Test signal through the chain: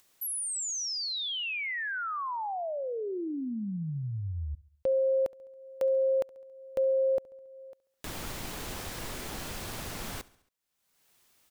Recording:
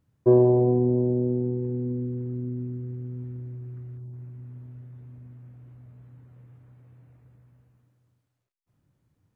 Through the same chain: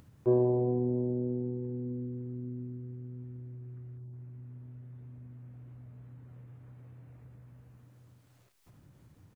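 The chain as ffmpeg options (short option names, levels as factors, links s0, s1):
-filter_complex "[0:a]acompressor=mode=upward:threshold=0.0224:ratio=2.5,asplit=2[s0][s1];[s1]aecho=0:1:69|138|207|276:0.0794|0.0461|0.0267|0.0155[s2];[s0][s2]amix=inputs=2:normalize=0,volume=0.398"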